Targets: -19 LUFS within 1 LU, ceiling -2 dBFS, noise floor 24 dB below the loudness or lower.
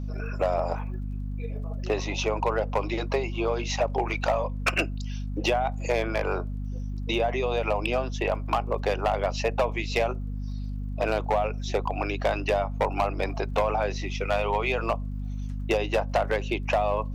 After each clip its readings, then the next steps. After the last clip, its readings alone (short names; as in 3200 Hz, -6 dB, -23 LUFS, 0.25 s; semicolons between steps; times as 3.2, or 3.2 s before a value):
ticks 22/s; hum 50 Hz; harmonics up to 250 Hz; hum level -29 dBFS; loudness -28.0 LUFS; peak -14.0 dBFS; loudness target -19.0 LUFS
-> de-click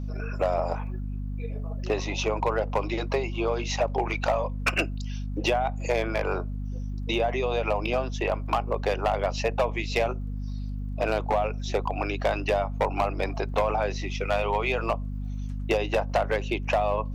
ticks 0.41/s; hum 50 Hz; harmonics up to 250 Hz; hum level -29 dBFS
-> de-hum 50 Hz, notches 5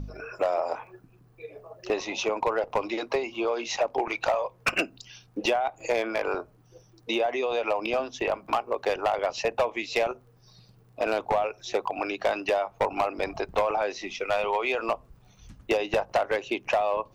hum none; loudness -28.0 LUFS; peak -11.5 dBFS; loudness target -19.0 LUFS
-> gain +9 dB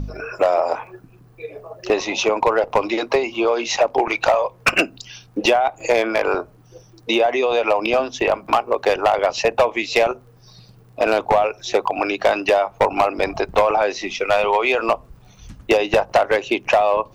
loudness -19.0 LUFS; peak -2.5 dBFS; noise floor -49 dBFS